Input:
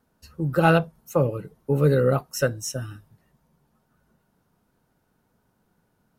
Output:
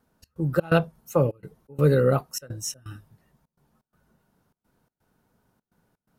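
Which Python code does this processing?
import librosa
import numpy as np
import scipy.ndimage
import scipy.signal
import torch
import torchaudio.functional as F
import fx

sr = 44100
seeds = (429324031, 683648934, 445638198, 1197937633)

y = fx.step_gate(x, sr, bpm=126, pattern='xx.xx.xxx', floor_db=-24.0, edge_ms=4.5)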